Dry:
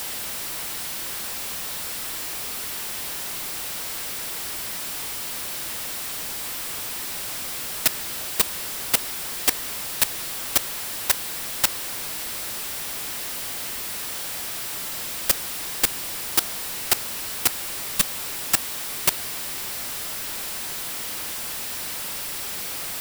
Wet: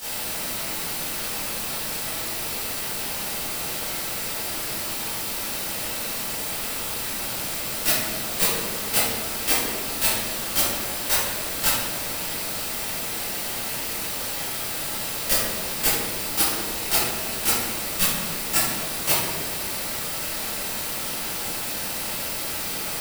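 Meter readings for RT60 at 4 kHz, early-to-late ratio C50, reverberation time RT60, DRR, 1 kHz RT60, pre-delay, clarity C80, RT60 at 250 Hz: 0.75 s, −2.5 dB, 1.5 s, −13.5 dB, 1.2 s, 14 ms, 1.5 dB, 2.2 s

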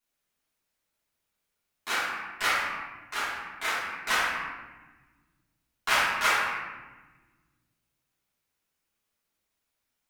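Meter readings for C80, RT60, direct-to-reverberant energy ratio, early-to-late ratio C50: 2.0 dB, 1.3 s, −11.5 dB, −1.0 dB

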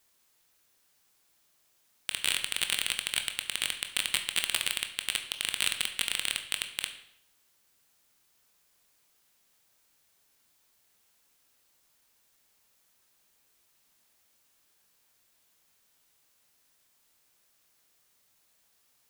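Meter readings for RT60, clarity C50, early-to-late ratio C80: 0.70 s, 10.0 dB, 12.5 dB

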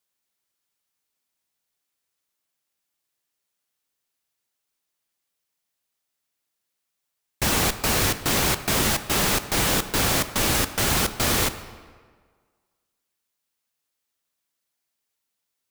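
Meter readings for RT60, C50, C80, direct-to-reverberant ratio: 1.6 s, 12.5 dB, 13.5 dB, 10.5 dB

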